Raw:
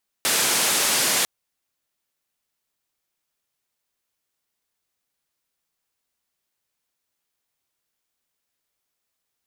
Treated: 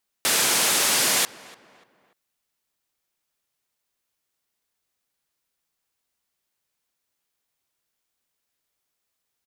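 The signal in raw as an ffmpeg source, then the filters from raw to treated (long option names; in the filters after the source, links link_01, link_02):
-f lavfi -i "anoisesrc=color=white:duration=1:sample_rate=44100:seed=1,highpass=frequency=180,lowpass=frequency=11000,volume=-13.1dB"
-filter_complex "[0:a]asplit=2[link_01][link_02];[link_02]adelay=293,lowpass=frequency=2200:poles=1,volume=-19dB,asplit=2[link_03][link_04];[link_04]adelay=293,lowpass=frequency=2200:poles=1,volume=0.44,asplit=2[link_05][link_06];[link_06]adelay=293,lowpass=frequency=2200:poles=1,volume=0.44[link_07];[link_01][link_03][link_05][link_07]amix=inputs=4:normalize=0"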